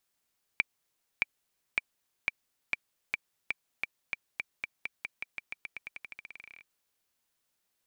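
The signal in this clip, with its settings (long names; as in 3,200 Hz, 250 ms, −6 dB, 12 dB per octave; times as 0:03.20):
bouncing ball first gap 0.62 s, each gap 0.9, 2,340 Hz, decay 24 ms −11 dBFS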